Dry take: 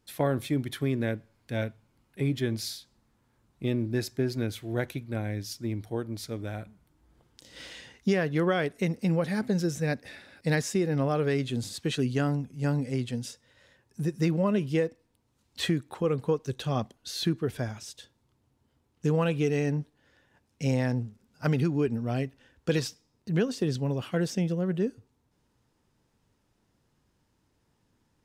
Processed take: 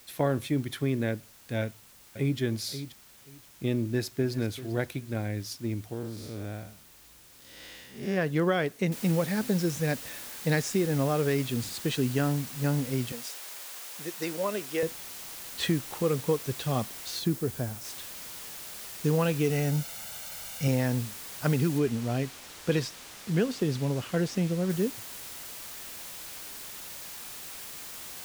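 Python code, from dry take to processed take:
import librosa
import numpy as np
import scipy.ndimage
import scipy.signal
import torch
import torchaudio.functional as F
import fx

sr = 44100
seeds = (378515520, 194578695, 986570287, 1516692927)

y = fx.echo_throw(x, sr, start_s=1.62, length_s=0.77, ms=530, feedback_pct=20, wet_db=-11.0)
y = fx.echo_throw(y, sr, start_s=3.83, length_s=0.56, ms=390, feedback_pct=30, wet_db=-15.5)
y = fx.spec_blur(y, sr, span_ms=178.0, at=(5.92, 8.16), fade=0.02)
y = fx.noise_floor_step(y, sr, seeds[0], at_s=8.92, before_db=-55, after_db=-42, tilt_db=0.0)
y = fx.highpass(y, sr, hz=440.0, slope=12, at=(13.12, 14.83))
y = fx.peak_eq(y, sr, hz=2500.0, db=-6.5, octaves=2.9, at=(17.19, 17.85))
y = fx.comb(y, sr, ms=1.4, depth=0.59, at=(19.5, 20.68))
y = fx.high_shelf(y, sr, hz=10000.0, db=-11.5, at=(21.78, 24.7))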